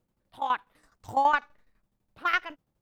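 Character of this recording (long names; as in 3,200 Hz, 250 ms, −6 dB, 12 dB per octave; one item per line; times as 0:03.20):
tremolo saw down 12 Hz, depth 75%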